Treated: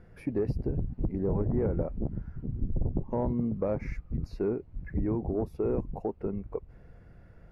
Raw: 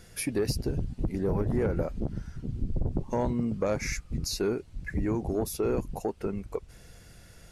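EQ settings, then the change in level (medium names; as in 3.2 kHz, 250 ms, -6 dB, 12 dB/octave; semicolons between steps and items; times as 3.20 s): distance through air 400 m; peaking EQ 3.5 kHz -12.5 dB 1.3 oct; dynamic bell 1.5 kHz, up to -5 dB, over -57 dBFS, Q 2; 0.0 dB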